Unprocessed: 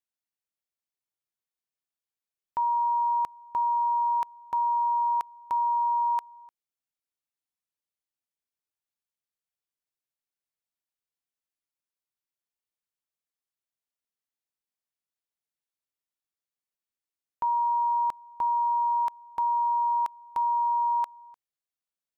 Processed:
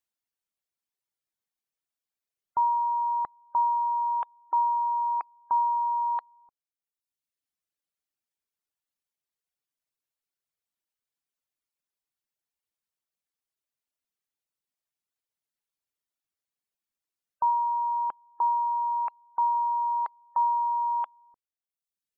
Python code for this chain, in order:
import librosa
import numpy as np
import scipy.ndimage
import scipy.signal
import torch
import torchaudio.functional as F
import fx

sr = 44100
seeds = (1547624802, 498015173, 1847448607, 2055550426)

y = fx.dereverb_blind(x, sr, rt60_s=1.2)
y = fx.spec_gate(y, sr, threshold_db=-30, keep='strong')
y = fx.highpass(y, sr, hz=360.0, slope=6, at=(17.5, 19.55))
y = F.gain(torch.from_numpy(y), 3.0).numpy()